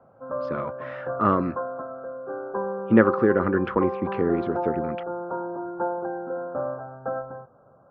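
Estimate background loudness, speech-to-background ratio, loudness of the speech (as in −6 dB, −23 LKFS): −31.5 LKFS, 7.5 dB, −24.0 LKFS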